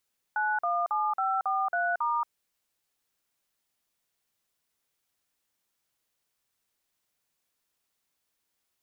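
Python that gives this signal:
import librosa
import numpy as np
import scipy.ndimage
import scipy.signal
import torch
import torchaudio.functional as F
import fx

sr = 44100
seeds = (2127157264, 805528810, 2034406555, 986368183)

y = fx.dtmf(sr, digits='917543*', tone_ms=228, gap_ms=46, level_db=-27.5)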